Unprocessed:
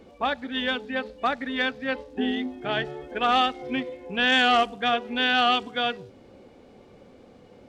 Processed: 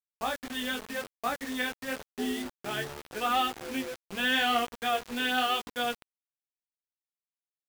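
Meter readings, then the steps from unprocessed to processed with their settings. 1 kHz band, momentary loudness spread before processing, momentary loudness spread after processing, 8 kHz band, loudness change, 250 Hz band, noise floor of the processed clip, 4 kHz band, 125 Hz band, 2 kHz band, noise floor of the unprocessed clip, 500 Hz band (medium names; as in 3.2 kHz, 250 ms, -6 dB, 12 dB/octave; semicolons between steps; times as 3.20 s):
-6.0 dB, 11 LU, 9 LU, no reading, -6.0 dB, -6.0 dB, under -85 dBFS, -6.0 dB, -5.5 dB, -6.0 dB, -52 dBFS, -6.5 dB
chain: chorus 0.86 Hz, delay 16.5 ms, depth 3.9 ms; word length cut 6-bit, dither none; trim -3.5 dB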